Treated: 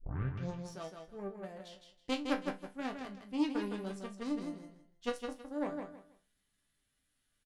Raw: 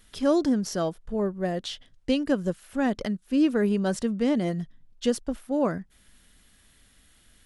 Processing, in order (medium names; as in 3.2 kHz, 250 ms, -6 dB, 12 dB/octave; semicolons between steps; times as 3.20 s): tape start-up on the opening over 0.69 s; Chebyshev shaper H 3 -11 dB, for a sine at -10.5 dBFS; chord resonator G2 sus4, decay 0.21 s; time-frequency box 4.23–4.52 s, 420–3700 Hz -7 dB; on a send: feedback delay 161 ms, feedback 24%, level -6 dB; on the sum: trim +6 dB